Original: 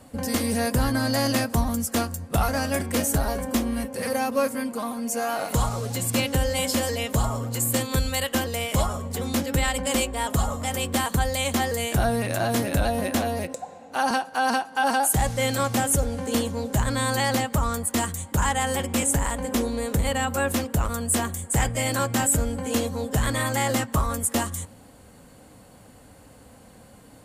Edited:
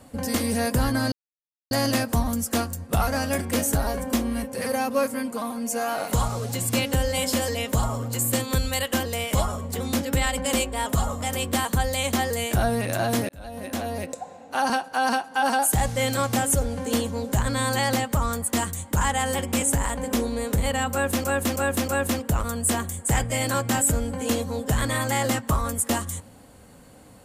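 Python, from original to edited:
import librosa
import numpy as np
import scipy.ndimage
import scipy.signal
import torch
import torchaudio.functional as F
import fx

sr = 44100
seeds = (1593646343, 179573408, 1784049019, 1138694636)

y = fx.edit(x, sr, fx.insert_silence(at_s=1.12, length_s=0.59),
    fx.fade_in_span(start_s=12.7, length_s=0.87),
    fx.repeat(start_s=20.33, length_s=0.32, count=4), tone=tone)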